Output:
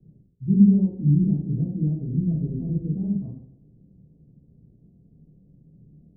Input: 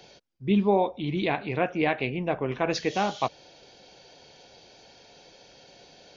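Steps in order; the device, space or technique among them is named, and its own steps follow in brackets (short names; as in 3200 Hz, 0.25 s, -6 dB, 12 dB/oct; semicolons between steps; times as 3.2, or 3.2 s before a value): club heard from the street (limiter -15.5 dBFS, peak gain reduction 4.5 dB; LPF 210 Hz 24 dB/oct; reverb RT60 0.65 s, pre-delay 10 ms, DRR -6 dB); gain +6 dB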